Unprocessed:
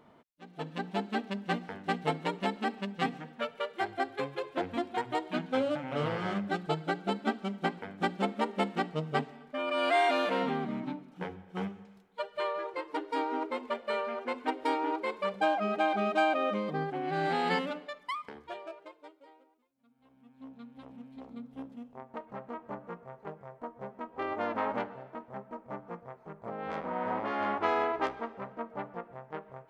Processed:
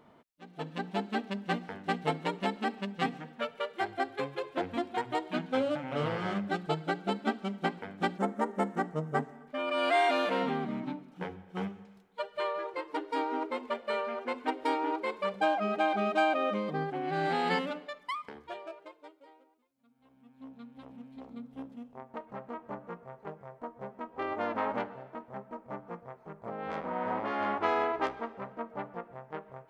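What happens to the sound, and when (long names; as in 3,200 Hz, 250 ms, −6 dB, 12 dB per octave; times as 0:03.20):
0:08.18–0:09.48: flat-topped bell 3,400 Hz −13 dB 1.3 octaves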